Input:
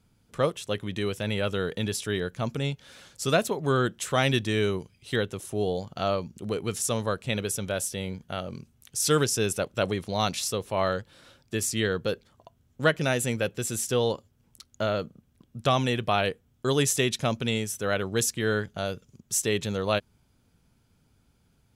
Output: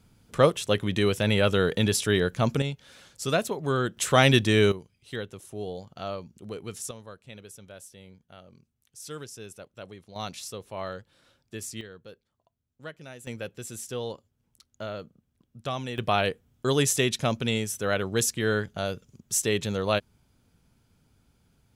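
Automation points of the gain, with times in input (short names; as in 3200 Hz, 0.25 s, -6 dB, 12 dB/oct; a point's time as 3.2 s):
+5.5 dB
from 2.62 s -2 dB
from 3.97 s +5 dB
from 4.72 s -7.5 dB
from 6.91 s -16.5 dB
from 10.16 s -9 dB
from 11.81 s -18.5 dB
from 13.27 s -8.5 dB
from 15.98 s +0.5 dB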